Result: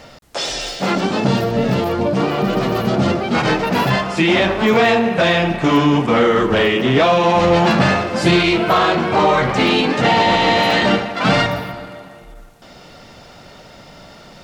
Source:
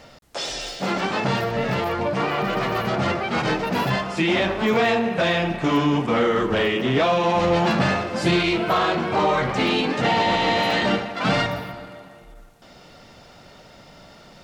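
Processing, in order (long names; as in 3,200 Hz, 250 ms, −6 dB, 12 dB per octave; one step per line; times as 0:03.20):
0:00.95–0:03.35: octave-band graphic EQ 250/1,000/2,000 Hz +5/−4/−7 dB
level +6 dB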